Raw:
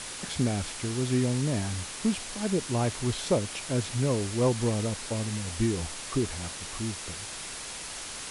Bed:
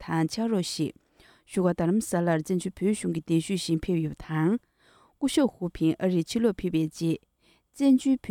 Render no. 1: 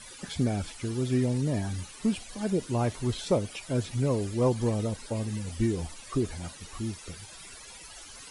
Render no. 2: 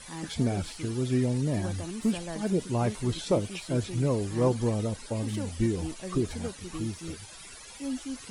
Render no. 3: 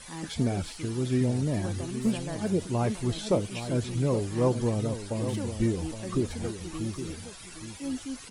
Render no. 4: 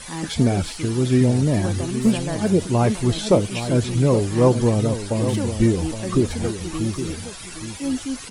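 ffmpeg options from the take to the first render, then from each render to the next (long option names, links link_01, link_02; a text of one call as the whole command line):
ffmpeg -i in.wav -af "afftdn=noise_reduction=15:noise_floor=-39" out.wav
ffmpeg -i in.wav -i bed.wav -filter_complex "[1:a]volume=-13.5dB[link_01];[0:a][link_01]amix=inputs=2:normalize=0" out.wav
ffmpeg -i in.wav -filter_complex "[0:a]asplit=2[link_01][link_02];[link_02]adelay=816.3,volume=-10dB,highshelf=frequency=4000:gain=-18.4[link_03];[link_01][link_03]amix=inputs=2:normalize=0" out.wav
ffmpeg -i in.wav -af "volume=9dB" out.wav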